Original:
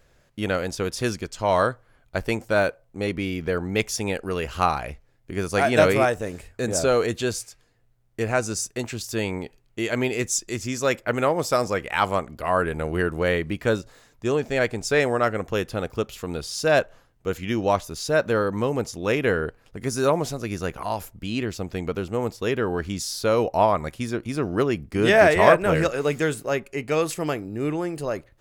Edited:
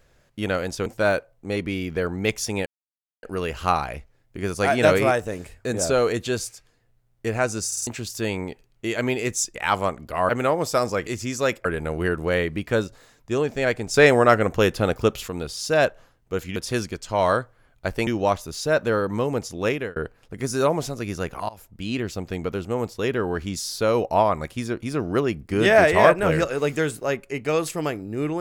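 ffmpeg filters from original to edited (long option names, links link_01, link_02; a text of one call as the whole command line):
ffmpeg -i in.wav -filter_complex "[0:a]asplit=17[link_01][link_02][link_03][link_04][link_05][link_06][link_07][link_08][link_09][link_10][link_11][link_12][link_13][link_14][link_15][link_16][link_17];[link_01]atrim=end=0.862[link_18];[link_02]atrim=start=2.368:end=4.17,asetpts=PTS-STARTPTS,afade=type=out:start_time=1.798:duration=0.004:curve=hsin,apad=pad_dur=0.57[link_19];[link_03]atrim=start=4.17:end=8.662,asetpts=PTS-STARTPTS,afade=type=in:duration=0.004:curve=hsin[link_20];[link_04]atrim=start=8.608:end=8.662[link_21];[link_05]atrim=start=8.608:end=8.662[link_22];[link_06]atrim=start=8.608:end=8.662[link_23];[link_07]atrim=start=8.808:end=10.492[link_24];[link_08]atrim=start=11.848:end=12.592[link_25];[link_09]atrim=start=11.068:end=11.852[link_26];[link_10]atrim=start=10.488:end=11.072[link_27];[link_11]atrim=start=12.588:end=14.882[link_28];[link_12]atrim=start=14.878:end=16.222,asetpts=PTS-STARTPTS,volume=6dB[link_29];[link_13]atrim=start=16.218:end=17.502[link_30];[link_14]atrim=start=0.858:end=2.372[link_31];[link_15]atrim=start=17.498:end=19.39,asetpts=PTS-STARTPTS,afade=type=out:start_time=1.612:duration=0.28[link_32];[link_16]atrim=start=19.39:end=20.92,asetpts=PTS-STARTPTS,afade=type=in:duration=0.004:curve=hsin,afade=type=out:start_time=1.526:duration=0.004:curve=hsin:silence=0.0841395[link_33];[link_17]atrim=start=20.92,asetpts=PTS-STARTPTS,afade=type=in:duration=0.38:silence=0.0841395[link_34];[link_19][link_20]concat=n=2:v=0:a=1[link_35];[link_18][link_35]acrossfade=duration=0.004:curve1=hsin:curve2=hsin[link_36];[link_36][link_21]acrossfade=duration=0.004:curve1=hsin:curve2=hsin[link_37];[link_37][link_22]acrossfade=duration=0.004:curve1=hsin:curve2=hsin[link_38];[link_38][link_23]acrossfade=duration=0.004:curve1=hsin:curve2=hsin[link_39];[link_39][link_24]acrossfade=duration=0.004:curve1=hsin:curve2=hsin[link_40];[link_40][link_25]acrossfade=duration=0.004:curve1=hsin:curve2=hsin[link_41];[link_41][link_26]acrossfade=duration=0.004:curve1=hsin:curve2=hsin[link_42];[link_42][link_27]acrossfade=duration=0.004:curve1=hsin:curve2=hsin[link_43];[link_43][link_28]acrossfade=duration=0.004:curve1=hsin:curve2=hsin[link_44];[link_44][link_29]acrossfade=duration=0.004:curve1=hsin:curve2=hsin[link_45];[link_45][link_30]acrossfade=duration=0.004:curve1=hsin:curve2=hsin[link_46];[link_46][link_31]acrossfade=duration=0.004:curve1=hsin:curve2=hsin[link_47];[link_32][link_33][link_34]concat=n=3:v=0:a=1[link_48];[link_47][link_48]acrossfade=duration=0.004:curve1=hsin:curve2=hsin" out.wav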